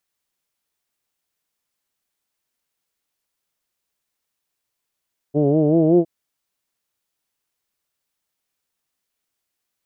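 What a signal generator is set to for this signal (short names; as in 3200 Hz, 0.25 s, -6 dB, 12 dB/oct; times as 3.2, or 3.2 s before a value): formant vowel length 0.71 s, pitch 141 Hz, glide +3.5 st, F1 370 Hz, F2 650 Hz, F3 3000 Hz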